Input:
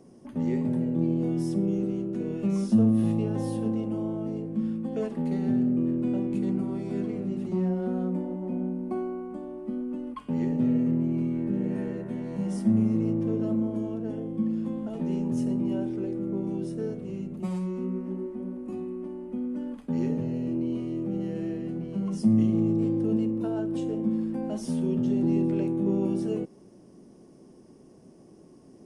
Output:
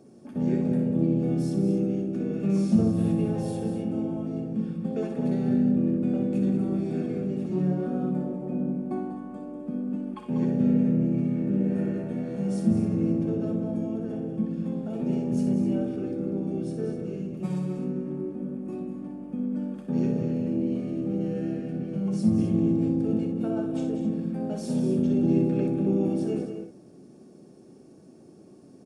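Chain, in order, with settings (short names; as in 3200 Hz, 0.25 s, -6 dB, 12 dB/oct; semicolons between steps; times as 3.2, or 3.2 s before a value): harmoniser -4 st -7 dB; notch comb 1000 Hz; tapped delay 61/87/193/256 ms -7.5/-17/-9/-11.5 dB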